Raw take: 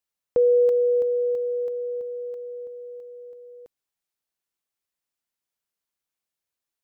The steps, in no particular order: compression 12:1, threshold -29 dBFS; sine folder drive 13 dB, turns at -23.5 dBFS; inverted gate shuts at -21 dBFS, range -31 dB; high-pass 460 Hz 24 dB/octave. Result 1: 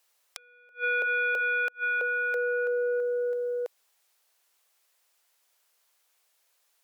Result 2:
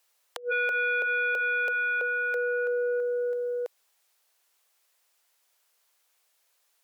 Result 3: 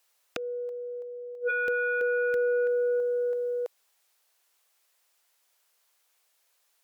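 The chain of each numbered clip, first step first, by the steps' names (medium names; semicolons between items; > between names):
compression > sine folder > high-pass > inverted gate; compression > inverted gate > sine folder > high-pass; inverted gate > compression > high-pass > sine folder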